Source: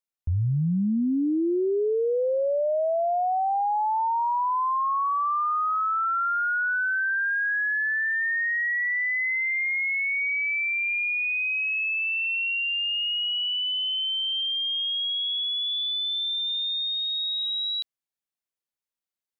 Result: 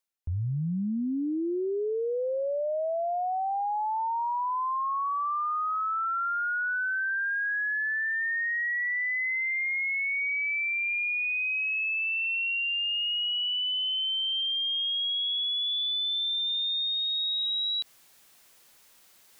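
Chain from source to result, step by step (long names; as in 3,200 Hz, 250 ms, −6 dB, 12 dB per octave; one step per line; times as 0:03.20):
low-shelf EQ 390 Hz −4 dB
reversed playback
upward compression, threshold −32 dBFS
reversed playback
brickwall limiter −26 dBFS, peak gain reduction 8 dB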